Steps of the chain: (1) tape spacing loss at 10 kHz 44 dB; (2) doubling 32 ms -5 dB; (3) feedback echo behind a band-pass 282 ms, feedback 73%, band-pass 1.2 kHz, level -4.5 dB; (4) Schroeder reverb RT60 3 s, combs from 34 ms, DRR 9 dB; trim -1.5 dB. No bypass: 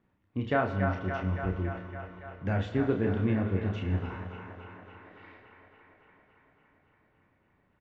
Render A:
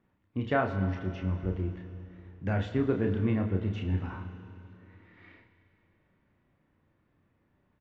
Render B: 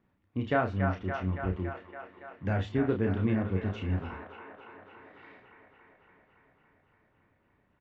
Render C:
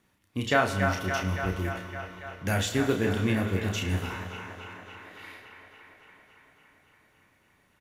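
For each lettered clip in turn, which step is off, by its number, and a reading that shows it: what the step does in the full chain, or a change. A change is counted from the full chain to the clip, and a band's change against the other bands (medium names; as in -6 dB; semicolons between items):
3, echo-to-direct -1.5 dB to -9.0 dB; 4, momentary loudness spread change +1 LU; 1, 4 kHz band +12.0 dB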